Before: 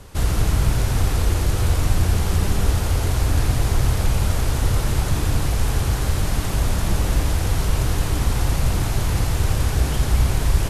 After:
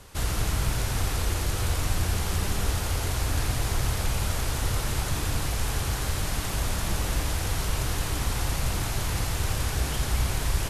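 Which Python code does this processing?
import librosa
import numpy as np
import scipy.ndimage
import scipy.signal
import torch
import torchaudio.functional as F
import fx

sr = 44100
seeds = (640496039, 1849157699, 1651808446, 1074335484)

y = fx.tilt_shelf(x, sr, db=-3.5, hz=700.0)
y = y * 10.0 ** (-5.0 / 20.0)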